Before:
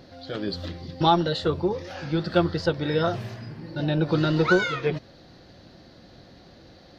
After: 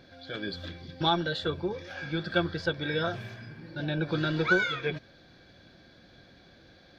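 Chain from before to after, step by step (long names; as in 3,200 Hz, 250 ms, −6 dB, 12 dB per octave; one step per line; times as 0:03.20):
parametric band 900 Hz −2 dB 0.33 octaves
hollow resonant body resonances 1,600/2,300/3,400 Hz, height 16 dB, ringing for 35 ms
level −7 dB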